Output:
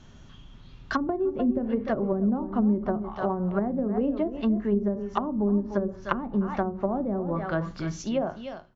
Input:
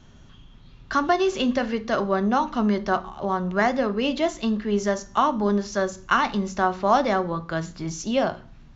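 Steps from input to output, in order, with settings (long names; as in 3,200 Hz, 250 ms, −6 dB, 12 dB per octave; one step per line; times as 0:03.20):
fade-out on the ending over 0.90 s
single-tap delay 299 ms −11.5 dB
treble cut that deepens with the level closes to 340 Hz, closed at −18.5 dBFS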